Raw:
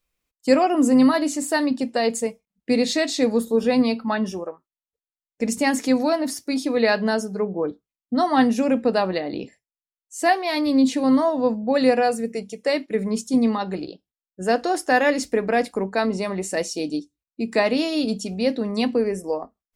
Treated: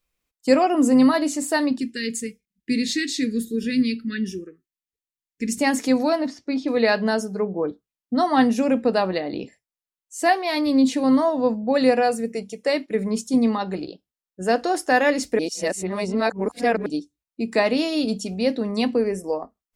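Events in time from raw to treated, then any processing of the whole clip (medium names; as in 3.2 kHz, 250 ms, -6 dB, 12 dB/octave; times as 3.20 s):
1.78–5.59 s: Chebyshev band-stop 380–1700 Hz, order 3
6.26–6.68 s: distance through air 180 m
15.39–16.86 s: reverse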